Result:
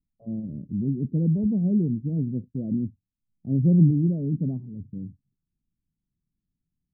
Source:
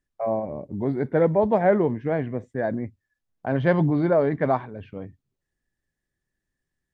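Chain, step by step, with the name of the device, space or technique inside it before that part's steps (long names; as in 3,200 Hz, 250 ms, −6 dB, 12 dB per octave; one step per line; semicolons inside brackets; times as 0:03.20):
the neighbour's flat through the wall (low-pass filter 270 Hz 24 dB per octave; parametric band 180 Hz +6 dB 0.91 octaves)
0:02.16–0:03.91: dynamic equaliser 550 Hz, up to +6 dB, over −39 dBFS, Q 0.8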